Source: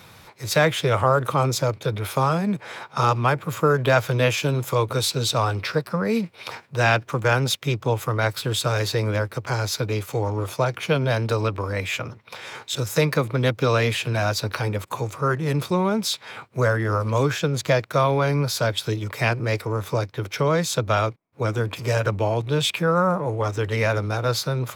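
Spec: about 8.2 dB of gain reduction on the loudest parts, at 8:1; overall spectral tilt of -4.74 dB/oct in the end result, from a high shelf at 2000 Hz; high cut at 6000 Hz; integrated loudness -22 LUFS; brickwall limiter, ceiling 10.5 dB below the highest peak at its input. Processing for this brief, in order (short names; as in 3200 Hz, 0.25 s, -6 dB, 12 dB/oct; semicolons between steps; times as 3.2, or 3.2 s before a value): LPF 6000 Hz; high shelf 2000 Hz +5.5 dB; compressor 8:1, threshold -21 dBFS; gain +7.5 dB; limiter -12.5 dBFS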